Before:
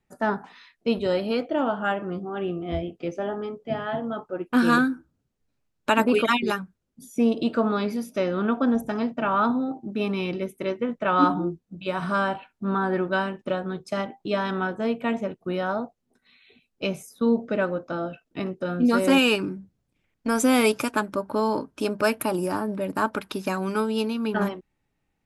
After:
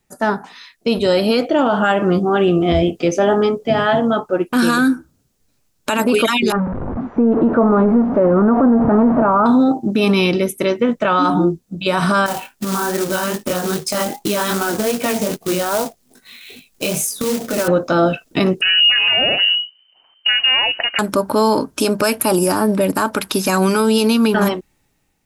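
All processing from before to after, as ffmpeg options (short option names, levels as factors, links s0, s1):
-filter_complex "[0:a]asettb=1/sr,asplit=3[s0][s1][s2];[s0]atrim=end=6.524[s3];[s1]atrim=start=6.52:end=9.46,asetpts=PTS-STARTPTS,afade=t=in:d=0.004:c=qsin,afade=t=out:st=2.936:d=0.004:c=qsin,aeval=exprs='val(0)+0.5*0.0422*sgn(val(0))':c=same,lowpass=f=1200:w=0.5412,lowpass=f=1200:w=1.3066[s4];[s2]atrim=start=9.456[s5];[s3][s4]acrossfade=d=0.004:c1=hsin:c2=qsin[s6];[s6][s5]acrossfade=d=0.004:c1=qsin:c2=hsin,asettb=1/sr,asplit=3[s7][s8][s9];[s7]atrim=end=12.264[s10];[s8]atrim=start=12.26:end=17.68,asetpts=PTS-STARTPTS,afade=t=in:d=0.004:c=qsin,afade=t=out:st=5.416:d=0.004:c=qsin,acompressor=threshold=0.0398:ratio=20:attack=3.2:release=140:knee=1:detection=peak,flanger=delay=18.5:depth=5.7:speed=2.5,acrusher=bits=3:mode=log:mix=0:aa=0.000001[s11];[s9]atrim=start=17.676[s12];[s10][s11]acrossfade=d=0.004:c1=hsin:c2=qsin[s13];[s13][s12]acrossfade=d=0.004:c1=qsin:c2=hsin,asettb=1/sr,asplit=3[s14][s15][s16];[s14]atrim=end=18.614[s17];[s15]atrim=start=18.61:end=20.99,asetpts=PTS-STARTPTS,afade=t=in:d=0.004:c=qsin,afade=t=out:st=2.376:d=0.004:c=qsin,equalizer=f=470:w=1.5:g=-8.5,acompressor=threshold=0.0282:ratio=4:attack=3.2:release=140:knee=1:detection=peak,lowpass=f=2600:t=q:w=0.5098,lowpass=f=2600:t=q:w=0.6013,lowpass=f=2600:t=q:w=0.9,lowpass=f=2600:t=q:w=2.563,afreqshift=-3100[s18];[s16]atrim=start=20.986[s19];[s17][s18]acrossfade=d=0.004:c1=hsin:c2=qsin[s20];[s20][s19]acrossfade=d=0.004:c1=qsin:c2=hsin,bass=f=250:g=-1,treble=f=4000:g=10,dynaudnorm=f=490:g=5:m=3.76,alimiter=level_in=4.22:limit=0.891:release=50:level=0:latency=1,volume=0.531"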